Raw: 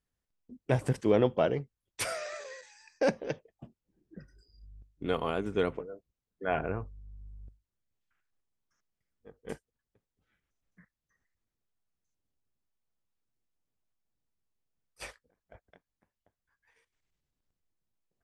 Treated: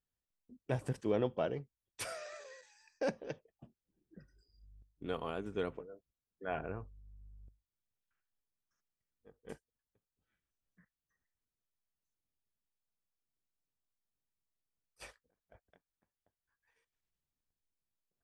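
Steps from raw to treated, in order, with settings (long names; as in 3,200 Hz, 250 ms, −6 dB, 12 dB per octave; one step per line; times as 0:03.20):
notch filter 2,100 Hz, Q 15
level −8 dB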